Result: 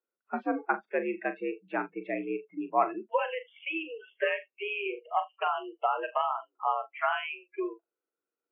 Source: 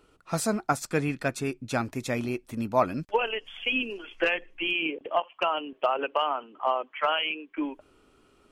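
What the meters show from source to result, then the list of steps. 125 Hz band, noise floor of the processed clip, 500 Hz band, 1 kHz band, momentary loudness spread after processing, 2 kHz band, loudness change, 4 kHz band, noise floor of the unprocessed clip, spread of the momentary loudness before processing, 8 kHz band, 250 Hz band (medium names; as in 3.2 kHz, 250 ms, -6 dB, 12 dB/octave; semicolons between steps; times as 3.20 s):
under -20 dB, under -85 dBFS, -3.5 dB, -1.0 dB, 7 LU, -4.0 dB, -3.5 dB, -11.5 dB, -62 dBFS, 7 LU, under -40 dB, -5.0 dB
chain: flutter echo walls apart 7 m, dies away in 0.23 s; mistuned SSB +67 Hz 160–2400 Hz; spectral noise reduction 29 dB; trim -2.5 dB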